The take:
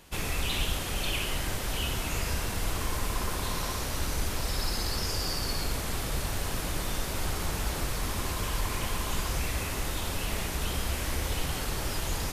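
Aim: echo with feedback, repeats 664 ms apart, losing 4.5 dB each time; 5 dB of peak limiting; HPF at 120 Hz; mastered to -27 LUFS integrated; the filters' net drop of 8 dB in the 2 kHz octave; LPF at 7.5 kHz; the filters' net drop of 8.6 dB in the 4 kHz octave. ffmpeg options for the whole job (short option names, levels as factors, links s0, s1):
-af "highpass=120,lowpass=7500,equalizer=f=2000:t=o:g=-8,equalizer=f=4000:t=o:g=-8.5,alimiter=level_in=1.78:limit=0.0631:level=0:latency=1,volume=0.562,aecho=1:1:664|1328|1992|2656|3320|3984|4648|5312|5976:0.596|0.357|0.214|0.129|0.0772|0.0463|0.0278|0.0167|0.01,volume=3.16"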